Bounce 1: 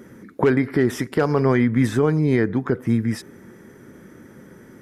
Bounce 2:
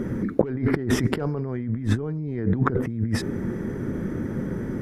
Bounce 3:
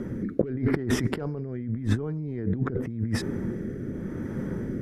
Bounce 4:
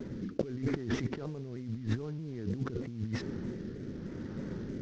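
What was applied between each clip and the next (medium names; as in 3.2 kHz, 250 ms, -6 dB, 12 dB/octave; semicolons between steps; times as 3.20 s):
tilt EQ -3 dB/octave; compressor with a negative ratio -25 dBFS, ratio -1
rotary cabinet horn 0.85 Hz; trim -2 dB
CVSD coder 32 kbps; vibrato with a chosen wave saw down 3.2 Hz, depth 100 cents; trim -7.5 dB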